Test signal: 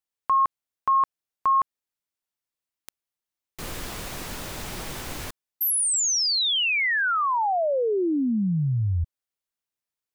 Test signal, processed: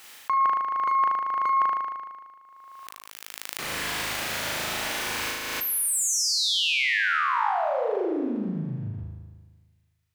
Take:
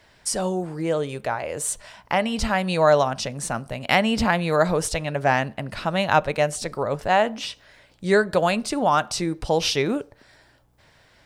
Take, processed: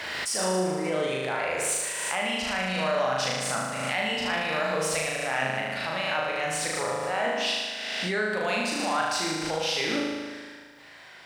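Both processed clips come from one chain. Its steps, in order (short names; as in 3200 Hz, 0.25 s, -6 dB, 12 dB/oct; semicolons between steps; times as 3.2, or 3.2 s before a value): half-wave gain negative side -3 dB; bell 2100 Hz +7.5 dB 2.2 oct; reverse; compressor 12:1, threshold -28 dBFS; reverse; HPF 270 Hz 6 dB/oct; on a send: flutter echo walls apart 6.5 m, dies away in 1.5 s; on the sum: backwards sustainer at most 24 dB/s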